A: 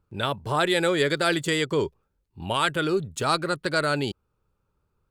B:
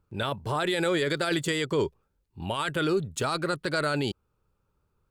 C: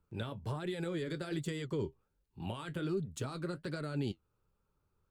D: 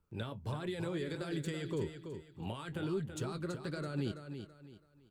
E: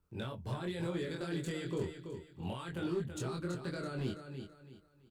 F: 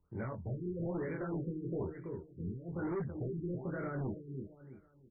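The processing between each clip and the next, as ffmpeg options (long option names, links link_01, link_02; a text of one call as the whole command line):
ffmpeg -i in.wav -af "alimiter=limit=-18dB:level=0:latency=1:release=13" out.wav
ffmpeg -i in.wav -filter_complex "[0:a]acrossover=split=330[link_01][link_02];[link_02]acompressor=threshold=-37dB:ratio=10[link_03];[link_01][link_03]amix=inputs=2:normalize=0,flanger=delay=4.3:depth=7:regen=-52:speed=1.3:shape=sinusoidal,volume=-1dB" out.wav
ffmpeg -i in.wav -af "aecho=1:1:330|660|990|1320:0.376|0.117|0.0361|0.0112,volume=-1dB" out.wav
ffmpeg -i in.wav -filter_complex "[0:a]asoftclip=type=hard:threshold=-30dB,asplit=2[link_01][link_02];[link_02]adelay=23,volume=-2dB[link_03];[link_01][link_03]amix=inputs=2:normalize=0,volume=-1.5dB" out.wav
ffmpeg -i in.wav -af "volume=35dB,asoftclip=hard,volume=-35dB,afftfilt=real='re*lt(b*sr/1024,440*pow(2400/440,0.5+0.5*sin(2*PI*1.1*pts/sr)))':imag='im*lt(b*sr/1024,440*pow(2400/440,0.5+0.5*sin(2*PI*1.1*pts/sr)))':win_size=1024:overlap=0.75,volume=2dB" out.wav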